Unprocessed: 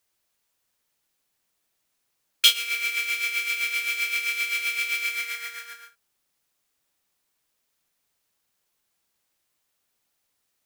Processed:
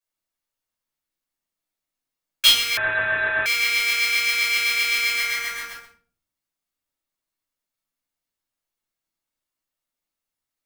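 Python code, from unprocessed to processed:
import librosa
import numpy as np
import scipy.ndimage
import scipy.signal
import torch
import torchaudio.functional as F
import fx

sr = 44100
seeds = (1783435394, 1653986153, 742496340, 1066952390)

y = fx.dynamic_eq(x, sr, hz=1300.0, q=1.5, threshold_db=-46.0, ratio=4.0, max_db=5)
y = fx.leveller(y, sr, passes=3)
y = fx.room_shoebox(y, sr, seeds[0], volume_m3=330.0, walls='furnished', distance_m=5.5)
y = fx.freq_invert(y, sr, carrier_hz=3900, at=(2.77, 3.46))
y = F.gain(torch.from_numpy(y), -13.0).numpy()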